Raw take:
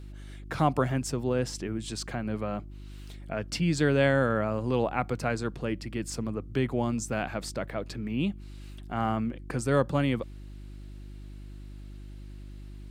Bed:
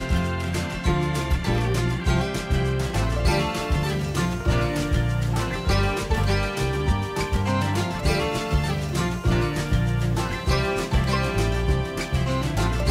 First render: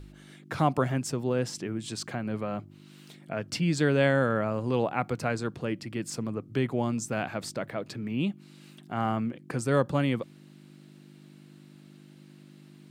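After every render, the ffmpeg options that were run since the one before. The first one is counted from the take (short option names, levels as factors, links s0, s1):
-af "bandreject=f=50:t=h:w=4,bandreject=f=100:t=h:w=4"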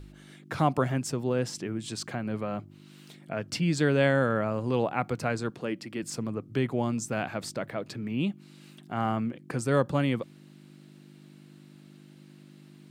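-filter_complex "[0:a]asettb=1/sr,asplit=3[s0][s1][s2];[s0]atrim=end=5.504[s3];[s1]atrim=start=5.5:end=6.03,asetpts=PTS-STARTPTS,afade=t=in:d=0.004:c=qsin,afade=t=out:st=0.526:d=0.004:c=qsin,highpass=180[s4];[s2]atrim=start=6.026[s5];[s3][s4]acrossfade=d=0.004:c1=hsin:c2=qsin[s6];[s6][s5]acrossfade=d=0.004:c1=qsin:c2=hsin"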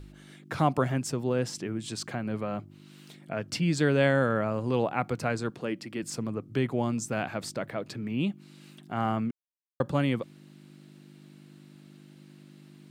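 -filter_complex "[0:a]asplit=3[s0][s1][s2];[s0]atrim=end=9.31,asetpts=PTS-STARTPTS,afade=t=out:st=9.306:d=0.004:c=hsin[s3];[s1]atrim=start=9.31:end=9.8,asetpts=PTS-STARTPTS,volume=0[s4];[s2]atrim=start=9.8,asetpts=PTS-STARTPTS,afade=t=in:d=0.004:c=hsin[s5];[s3][s4][s5]concat=n=3:v=0:a=1"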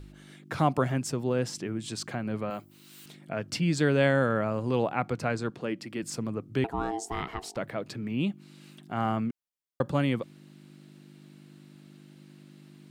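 -filter_complex "[0:a]asettb=1/sr,asplit=3[s0][s1][s2];[s0]atrim=end=2.504[s3];[s1]atrim=start=2.5:end=3.06,asetpts=PTS-STARTPTS,afade=t=in:d=0.004:c=qsin,afade=t=out:st=0.556:d=0.004:c=qsin,aemphasis=mode=production:type=bsi[s4];[s2]atrim=start=3.056[s5];[s3][s4]acrossfade=d=0.004:c1=hsin:c2=qsin[s6];[s6][s5]acrossfade=d=0.004:c1=qsin:c2=hsin,asettb=1/sr,asplit=3[s7][s8][s9];[s7]atrim=end=4.934[s10];[s8]atrim=start=4.93:end=5.8,asetpts=PTS-STARTPTS,afade=t=in:d=0.004:c=qsin,afade=t=out:st=0.866:d=0.004:c=qsin,highshelf=f=9300:g=-7.5[s11];[s9]atrim=start=5.796[s12];[s10][s11]acrossfade=d=0.004:c1=hsin:c2=qsin[s13];[s13][s12]acrossfade=d=0.004:c1=qsin:c2=hsin,asettb=1/sr,asplit=3[s14][s15][s16];[s14]atrim=end=6.644[s17];[s15]atrim=start=6.64:end=7.57,asetpts=PTS-STARTPTS,afade=t=in:d=0.004:c=qsin,afade=t=out:st=0.926:d=0.004:c=qsin,aeval=exprs='val(0)*sin(2*PI*560*n/s)':c=same[s18];[s16]atrim=start=7.566[s19];[s17][s18]acrossfade=d=0.004:c1=hsin:c2=qsin[s20];[s20][s19]acrossfade=d=0.004:c1=qsin:c2=hsin"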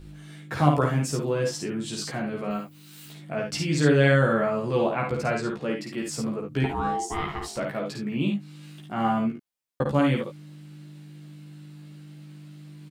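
-filter_complex "[0:a]asplit=2[s0][s1];[s1]adelay=14,volume=0.794[s2];[s0][s2]amix=inputs=2:normalize=0,aecho=1:1:53|73:0.596|0.376"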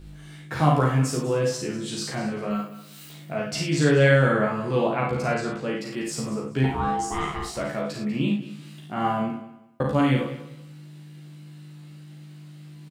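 -filter_complex "[0:a]asplit=2[s0][s1];[s1]adelay=38,volume=0.631[s2];[s0][s2]amix=inputs=2:normalize=0,aecho=1:1:194|388|582:0.178|0.0427|0.0102"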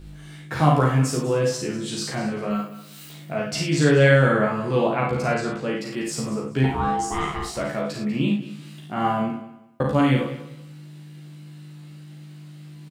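-af "volume=1.26"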